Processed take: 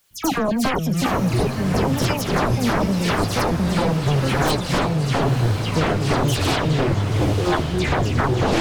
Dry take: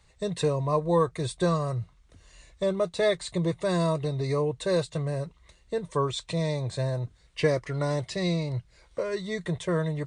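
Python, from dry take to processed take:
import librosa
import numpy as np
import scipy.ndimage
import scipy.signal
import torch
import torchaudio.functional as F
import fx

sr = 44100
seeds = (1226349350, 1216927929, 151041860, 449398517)

p1 = fx.speed_glide(x, sr, from_pct=159, to_pct=75)
p2 = fx.leveller(p1, sr, passes=1)
p3 = fx.curve_eq(p2, sr, hz=(350.0, 1300.0, 2500.0), db=(0, -27, -1))
p4 = fx.echo_pitch(p3, sr, ms=271, semitones=-5, count=3, db_per_echo=-3.0)
p5 = fx.step_gate(p4, sr, bpm=110, pattern='.xx.x..x.x..x.x', floor_db=-12.0, edge_ms=4.5)
p6 = fx.fold_sine(p5, sr, drive_db=18, ceiling_db=-12.0)
p7 = fx.high_shelf(p6, sr, hz=2900.0, db=-8.0)
p8 = fx.dispersion(p7, sr, late='lows', ms=106.0, hz=2700.0)
p9 = p8 + fx.echo_diffused(p8, sr, ms=1010, feedback_pct=55, wet_db=-8.5, dry=0)
p10 = fx.quant_dither(p9, sr, seeds[0], bits=10, dither='triangular')
y = p10 * 10.0 ** (-3.5 / 20.0)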